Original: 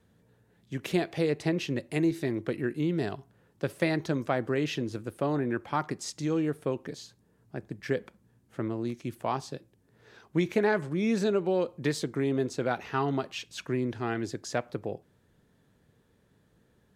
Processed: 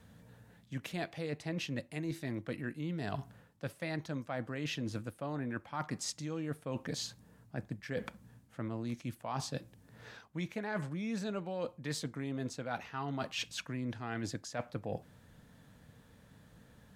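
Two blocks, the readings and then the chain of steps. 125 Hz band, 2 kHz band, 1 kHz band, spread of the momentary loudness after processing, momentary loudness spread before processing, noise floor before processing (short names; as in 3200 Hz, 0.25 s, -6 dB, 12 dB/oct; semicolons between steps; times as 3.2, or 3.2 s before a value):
-6.0 dB, -7.0 dB, -8.0 dB, 8 LU, 12 LU, -67 dBFS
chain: bell 380 Hz -13 dB 0.38 oct; reverse; compressor 12:1, threshold -42 dBFS, peak gain reduction 19.5 dB; reverse; gain +7.5 dB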